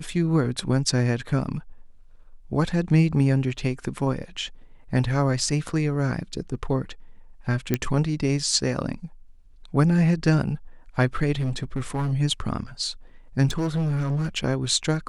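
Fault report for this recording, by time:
0:07.74: click −8 dBFS
0:11.39–0:12.13: clipping −22 dBFS
0:13.47–0:14.38: clipping −21.5 dBFS

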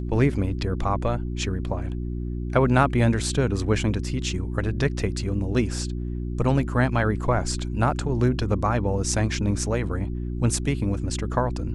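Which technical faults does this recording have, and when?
mains hum 60 Hz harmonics 6 −29 dBFS

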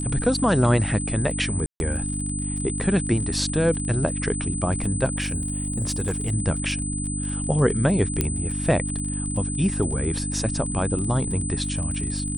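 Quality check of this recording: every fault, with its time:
surface crackle 42 per second −32 dBFS
mains hum 50 Hz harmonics 6 −29 dBFS
whistle 8,100 Hz −30 dBFS
0:01.66–0:01.80: drop-out 141 ms
0:05.20–0:06.33: clipping −20 dBFS
0:08.21: click −7 dBFS

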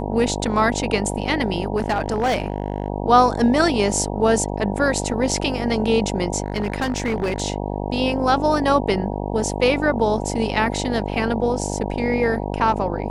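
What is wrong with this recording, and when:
mains buzz 50 Hz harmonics 19 −26 dBFS
0:01.76–0:02.88: clipping −15.5 dBFS
0:06.44–0:07.42: clipping −17.5 dBFS

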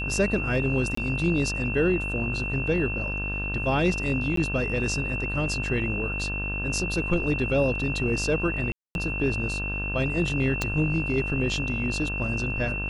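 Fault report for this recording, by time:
mains buzz 50 Hz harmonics 34 −32 dBFS
whistle 2,700 Hz −30 dBFS
0:00.95–0:00.97: drop-out 24 ms
0:04.36–0:04.37: drop-out 13 ms
0:08.72–0:08.95: drop-out 231 ms
0:10.62: click −11 dBFS

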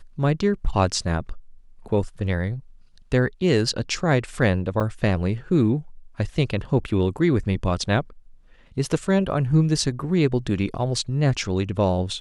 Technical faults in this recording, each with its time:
0:04.80–0:04.81: drop-out 5.6 ms

